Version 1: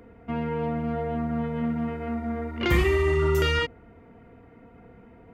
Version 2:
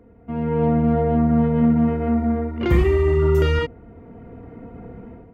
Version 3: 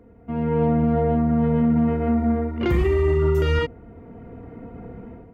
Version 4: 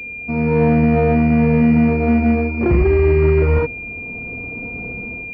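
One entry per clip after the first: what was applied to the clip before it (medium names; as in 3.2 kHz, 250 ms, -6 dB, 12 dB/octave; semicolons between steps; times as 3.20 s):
tilt shelf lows +6.5 dB, about 1.1 kHz; level rider gain up to 13 dB; trim -6 dB
peak limiter -12 dBFS, peak gain reduction 5 dB
CVSD coder 32 kbps; class-D stage that switches slowly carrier 2.4 kHz; trim +6 dB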